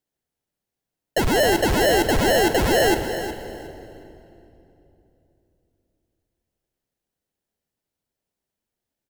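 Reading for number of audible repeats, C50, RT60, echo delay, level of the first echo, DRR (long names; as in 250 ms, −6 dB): 2, 7.5 dB, 3.0 s, 363 ms, −12.0 dB, 7.0 dB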